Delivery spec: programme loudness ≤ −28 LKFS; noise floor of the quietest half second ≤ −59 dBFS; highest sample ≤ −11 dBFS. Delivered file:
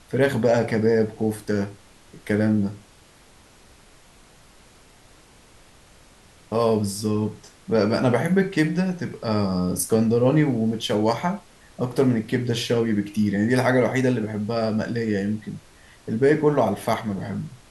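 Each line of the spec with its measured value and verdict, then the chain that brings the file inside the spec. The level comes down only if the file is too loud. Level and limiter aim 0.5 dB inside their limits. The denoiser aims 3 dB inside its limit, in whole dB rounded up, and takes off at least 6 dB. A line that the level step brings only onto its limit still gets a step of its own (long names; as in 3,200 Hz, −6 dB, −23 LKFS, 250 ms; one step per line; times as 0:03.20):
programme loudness −22.5 LKFS: out of spec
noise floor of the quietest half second −52 dBFS: out of spec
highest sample −6.0 dBFS: out of spec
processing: broadband denoise 6 dB, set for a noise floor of −52 dBFS
level −6 dB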